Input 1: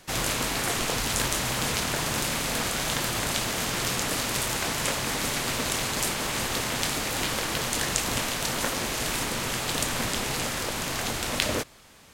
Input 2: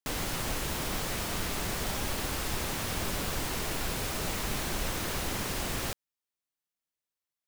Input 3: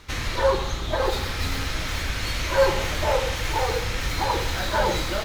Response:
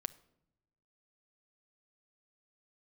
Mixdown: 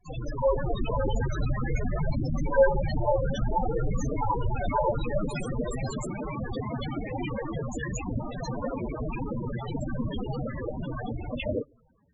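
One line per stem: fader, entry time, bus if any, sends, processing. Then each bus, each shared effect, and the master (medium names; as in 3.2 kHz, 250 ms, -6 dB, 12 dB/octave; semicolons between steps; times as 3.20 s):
-8.5 dB, 0.00 s, send -4 dB, none
-5.0 dB, 0.00 s, send -3 dB, tone controls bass -6 dB, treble +10 dB; flange 0.55 Hz, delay 5.2 ms, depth 5.2 ms, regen -12%
-12.5 dB, 0.00 s, no send, band-stop 4.8 kHz, Q 23; comb 7 ms, depth 50%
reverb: on, pre-delay 6 ms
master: level rider gain up to 7 dB; waveshaping leveller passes 1; loudest bins only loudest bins 8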